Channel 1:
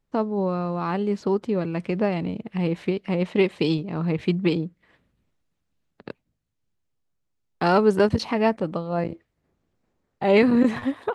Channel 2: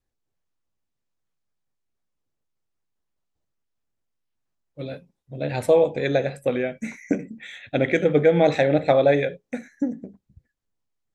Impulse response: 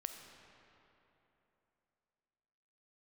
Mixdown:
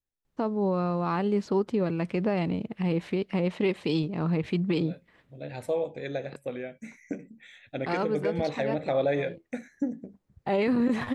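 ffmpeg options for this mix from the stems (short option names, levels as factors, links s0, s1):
-filter_complex "[0:a]adelay=250,volume=0.891[s0];[1:a]volume=0.596,afade=t=in:st=8.52:d=0.55:silence=0.446684,asplit=2[s1][s2];[s2]apad=whole_len=502666[s3];[s0][s3]sidechaincompress=threshold=0.0141:ratio=8:attack=47:release=832[s4];[s4][s1]amix=inputs=2:normalize=0,alimiter=limit=0.133:level=0:latency=1:release=73"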